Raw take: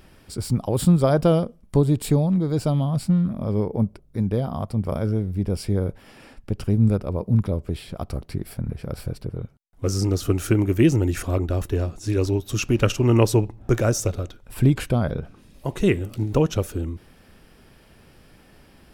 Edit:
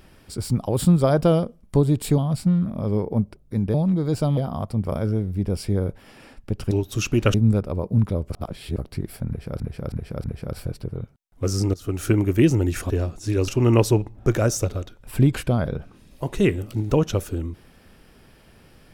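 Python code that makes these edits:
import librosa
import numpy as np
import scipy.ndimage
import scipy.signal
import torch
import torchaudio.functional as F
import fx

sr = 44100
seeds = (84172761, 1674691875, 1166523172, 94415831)

y = fx.edit(x, sr, fx.move(start_s=2.18, length_s=0.63, to_s=4.37),
    fx.reverse_span(start_s=7.67, length_s=0.48),
    fx.repeat(start_s=8.65, length_s=0.32, count=4),
    fx.fade_in_from(start_s=10.15, length_s=0.34, floor_db=-19.0),
    fx.cut(start_s=11.31, length_s=0.39),
    fx.move(start_s=12.28, length_s=0.63, to_s=6.71), tone=tone)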